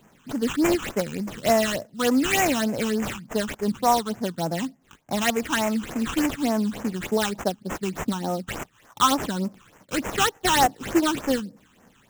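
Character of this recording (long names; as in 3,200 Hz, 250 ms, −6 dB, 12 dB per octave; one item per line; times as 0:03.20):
aliases and images of a low sample rate 4,700 Hz, jitter 20%
phaser sweep stages 8, 3.4 Hz, lowest notch 570–4,200 Hz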